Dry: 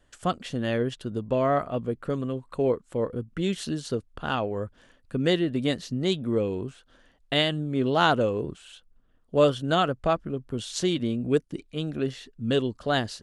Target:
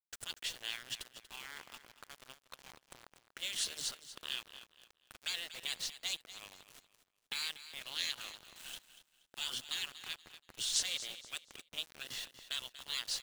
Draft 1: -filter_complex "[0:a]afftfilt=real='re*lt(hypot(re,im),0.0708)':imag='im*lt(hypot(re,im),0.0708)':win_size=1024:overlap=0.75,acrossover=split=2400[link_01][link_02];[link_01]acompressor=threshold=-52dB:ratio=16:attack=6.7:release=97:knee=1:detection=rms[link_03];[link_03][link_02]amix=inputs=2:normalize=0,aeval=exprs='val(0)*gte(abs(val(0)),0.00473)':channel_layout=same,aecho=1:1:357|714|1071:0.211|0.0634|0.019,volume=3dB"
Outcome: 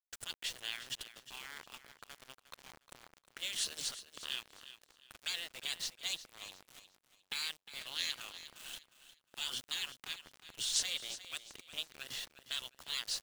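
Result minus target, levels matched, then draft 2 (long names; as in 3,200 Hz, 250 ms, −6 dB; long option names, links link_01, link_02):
echo 119 ms late
-filter_complex "[0:a]afftfilt=real='re*lt(hypot(re,im),0.0708)':imag='im*lt(hypot(re,im),0.0708)':win_size=1024:overlap=0.75,acrossover=split=2400[link_01][link_02];[link_01]acompressor=threshold=-52dB:ratio=16:attack=6.7:release=97:knee=1:detection=rms[link_03];[link_03][link_02]amix=inputs=2:normalize=0,aeval=exprs='val(0)*gte(abs(val(0)),0.00473)':channel_layout=same,aecho=1:1:238|476|714:0.211|0.0634|0.019,volume=3dB"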